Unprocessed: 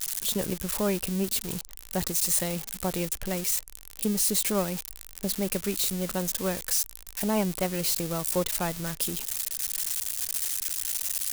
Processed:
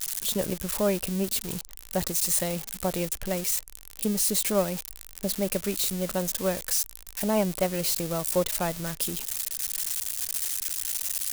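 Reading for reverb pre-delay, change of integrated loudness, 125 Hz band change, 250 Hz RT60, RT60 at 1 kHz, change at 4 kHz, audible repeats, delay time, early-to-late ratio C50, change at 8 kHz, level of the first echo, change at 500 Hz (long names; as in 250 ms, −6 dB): no reverb audible, +0.5 dB, 0.0 dB, no reverb audible, no reverb audible, 0.0 dB, no echo audible, no echo audible, no reverb audible, 0.0 dB, no echo audible, +3.0 dB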